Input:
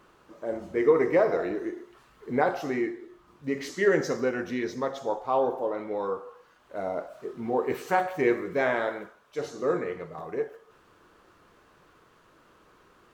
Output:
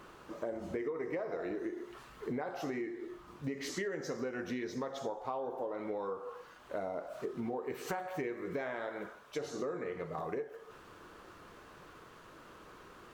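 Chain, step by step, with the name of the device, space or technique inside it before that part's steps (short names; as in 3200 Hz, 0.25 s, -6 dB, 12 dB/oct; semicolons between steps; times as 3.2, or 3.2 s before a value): serial compression, leveller first (compressor 2:1, threshold -30 dBFS, peak gain reduction 8.5 dB; compressor 6:1, threshold -40 dBFS, peak gain reduction 16 dB); gain +4.5 dB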